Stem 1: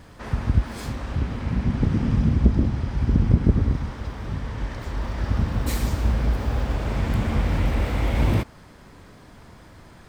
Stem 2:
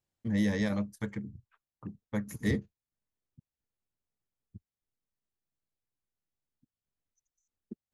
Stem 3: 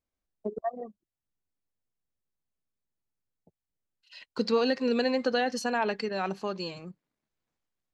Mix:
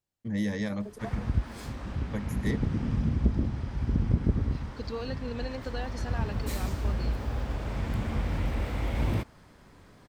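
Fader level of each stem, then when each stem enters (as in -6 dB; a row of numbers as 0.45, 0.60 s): -7.5, -1.5, -11.0 dB; 0.80, 0.00, 0.40 s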